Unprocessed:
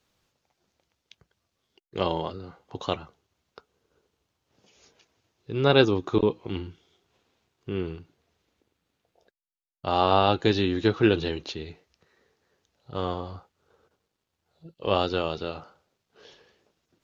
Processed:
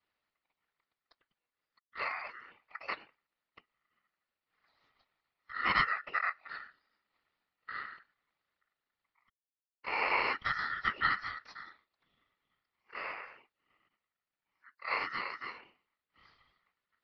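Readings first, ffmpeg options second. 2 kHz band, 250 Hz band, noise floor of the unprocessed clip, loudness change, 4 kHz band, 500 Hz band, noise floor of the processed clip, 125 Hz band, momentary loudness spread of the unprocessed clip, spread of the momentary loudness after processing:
+2.0 dB, -26.0 dB, -81 dBFS, -8.5 dB, -12.0 dB, -23.0 dB, under -85 dBFS, -25.0 dB, 19 LU, 20 LU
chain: -af "highpass=f=190:t=q:w=0.5412,highpass=f=190:t=q:w=1.307,lowpass=f=3.1k:t=q:w=0.5176,lowpass=f=3.1k:t=q:w=0.7071,lowpass=f=3.1k:t=q:w=1.932,afreqshift=-80,afftfilt=real='hypot(re,im)*cos(2*PI*random(0))':imag='hypot(re,im)*sin(2*PI*random(1))':win_size=512:overlap=0.75,aeval=exprs='val(0)*sin(2*PI*1600*n/s)':c=same,volume=-1dB"

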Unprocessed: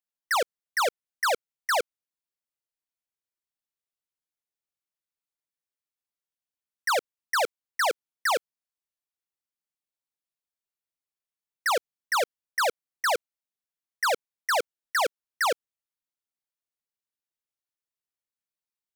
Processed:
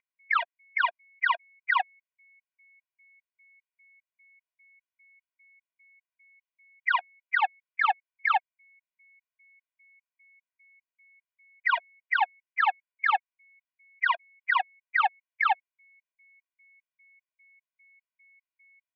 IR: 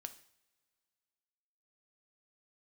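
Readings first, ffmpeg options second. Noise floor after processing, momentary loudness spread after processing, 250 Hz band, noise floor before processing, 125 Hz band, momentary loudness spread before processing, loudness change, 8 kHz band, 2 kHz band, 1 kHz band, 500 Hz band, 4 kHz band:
under -85 dBFS, 4 LU, under -35 dB, under -85 dBFS, n/a, 3 LU, 0.0 dB, under -40 dB, +2.5 dB, +1.5 dB, -18.5 dB, -6.5 dB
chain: -af "highpass=f=380:t=q:w=0.5412,highpass=f=380:t=q:w=1.307,lowpass=f=2.8k:t=q:w=0.5176,lowpass=f=2.8k:t=q:w=0.7071,lowpass=f=2.8k:t=q:w=1.932,afreqshift=280,aeval=exprs='val(0)+0.000891*sin(2*PI*2200*n/s)':c=same,afftfilt=real='re*gt(sin(2*PI*2.5*pts/sr)*(1-2*mod(floor(b*sr/1024/230),2)),0)':imag='im*gt(sin(2*PI*2.5*pts/sr)*(1-2*mod(floor(b*sr/1024/230),2)),0)':win_size=1024:overlap=0.75,volume=4dB"

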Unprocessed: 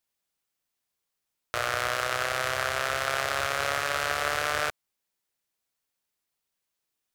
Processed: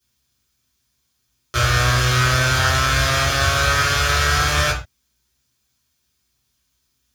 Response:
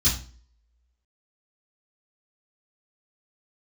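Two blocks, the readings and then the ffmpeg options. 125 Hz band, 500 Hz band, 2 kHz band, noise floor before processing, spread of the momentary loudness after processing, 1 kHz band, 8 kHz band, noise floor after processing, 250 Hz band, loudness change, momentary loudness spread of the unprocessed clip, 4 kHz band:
+24.5 dB, +6.0 dB, +9.5 dB, -83 dBFS, 4 LU, +8.5 dB, +12.5 dB, -70 dBFS, +17.0 dB, +10.5 dB, 3 LU, +12.5 dB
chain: -filter_complex "[0:a]alimiter=limit=-14.5dB:level=0:latency=1:release=21[a];[1:a]atrim=start_sample=2205,afade=t=out:st=0.2:d=0.01,atrim=end_sample=9261[b];[a][b]afir=irnorm=-1:irlink=0"

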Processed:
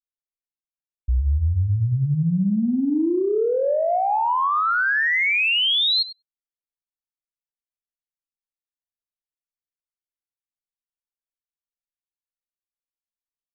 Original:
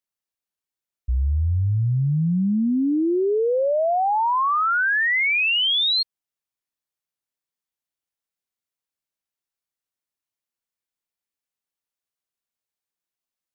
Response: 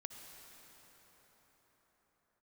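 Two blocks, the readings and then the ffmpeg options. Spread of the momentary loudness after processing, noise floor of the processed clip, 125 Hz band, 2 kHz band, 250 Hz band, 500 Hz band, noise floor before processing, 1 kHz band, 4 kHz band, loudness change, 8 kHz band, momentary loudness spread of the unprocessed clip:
5 LU, under -85 dBFS, 0.0 dB, 0.0 dB, 0.0 dB, -0.5 dB, under -85 dBFS, -0.5 dB, +0.5 dB, 0.0 dB, n/a, 6 LU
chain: -filter_complex "[0:a]asplit=2[a][b];[b]adelay=99,lowpass=f=1.5k:p=1,volume=-7dB,asplit=2[c][d];[d]adelay=99,lowpass=f=1.5k:p=1,volume=0.35,asplit=2[e][f];[f]adelay=99,lowpass=f=1.5k:p=1,volume=0.35,asplit=2[g][h];[h]adelay=99,lowpass=f=1.5k:p=1,volume=0.35[i];[a][c][e][g][i]amix=inputs=5:normalize=0,alimiter=limit=-17dB:level=0:latency=1:release=170,anlmdn=0.631,acontrast=39,volume=-3.5dB"

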